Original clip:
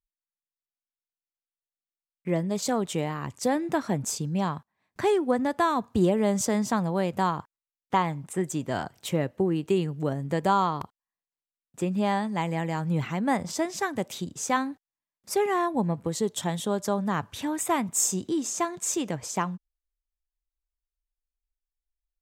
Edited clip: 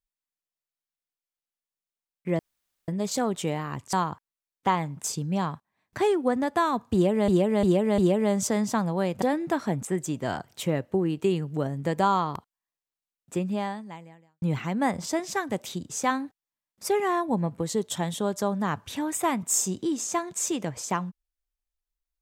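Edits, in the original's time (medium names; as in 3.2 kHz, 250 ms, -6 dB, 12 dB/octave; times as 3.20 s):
2.39 s: insert room tone 0.49 s
3.44–4.07 s: swap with 7.20–8.31 s
5.96–6.31 s: loop, 4 plays
11.85–12.88 s: fade out quadratic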